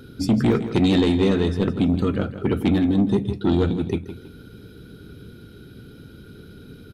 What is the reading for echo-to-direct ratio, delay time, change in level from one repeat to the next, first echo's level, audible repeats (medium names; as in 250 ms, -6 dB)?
-11.5 dB, 162 ms, -10.0 dB, -12.0 dB, 2